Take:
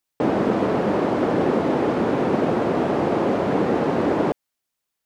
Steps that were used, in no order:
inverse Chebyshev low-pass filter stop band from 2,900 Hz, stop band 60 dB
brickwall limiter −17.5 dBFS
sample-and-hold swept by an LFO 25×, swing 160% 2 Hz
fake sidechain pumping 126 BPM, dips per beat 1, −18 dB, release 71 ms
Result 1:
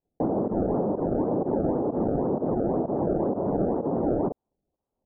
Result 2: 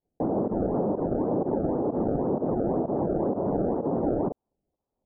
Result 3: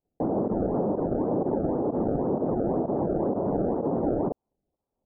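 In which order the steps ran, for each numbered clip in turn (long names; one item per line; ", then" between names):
sample-and-hold swept by an LFO, then brickwall limiter, then fake sidechain pumping, then inverse Chebyshev low-pass filter
brickwall limiter, then sample-and-hold swept by an LFO, then inverse Chebyshev low-pass filter, then fake sidechain pumping
fake sidechain pumping, then brickwall limiter, then sample-and-hold swept by an LFO, then inverse Chebyshev low-pass filter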